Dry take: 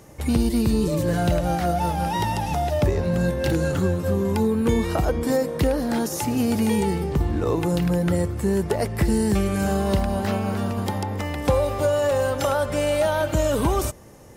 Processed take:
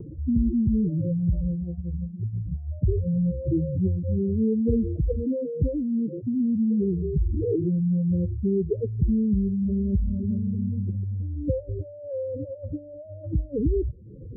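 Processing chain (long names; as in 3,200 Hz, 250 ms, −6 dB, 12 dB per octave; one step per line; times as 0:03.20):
expanding power law on the bin magnitudes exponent 3.3
Butterworth low-pass 500 Hz 96 dB per octave
upward compression, threshold −28 dBFS
on a send: convolution reverb, pre-delay 3 ms, DRR 23 dB
on the sum: level −1 dB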